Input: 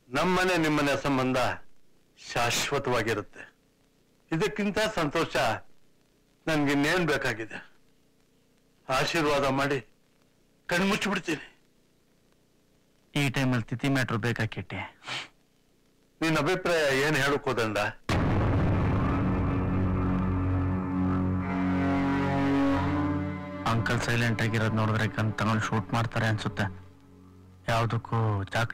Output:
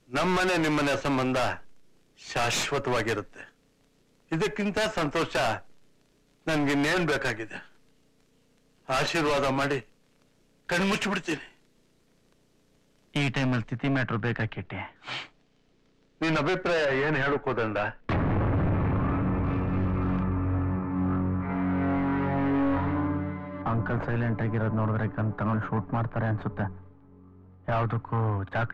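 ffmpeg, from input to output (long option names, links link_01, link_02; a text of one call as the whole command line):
ffmpeg -i in.wav -af "asetnsamples=nb_out_samples=441:pad=0,asendcmd='13.17 lowpass f 5900;13.78 lowpass f 2900;14.96 lowpass f 5000;16.85 lowpass f 2300;19.44 lowpass f 4500;20.23 lowpass f 2100;23.62 lowpass f 1200;27.72 lowpass f 1900',lowpass=12000" out.wav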